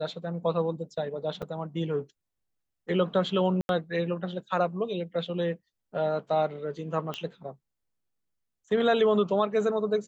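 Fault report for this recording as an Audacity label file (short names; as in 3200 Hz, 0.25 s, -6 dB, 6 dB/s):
1.420000	1.430000	gap 6.5 ms
3.610000	3.690000	gap 81 ms
7.140000	7.140000	pop -19 dBFS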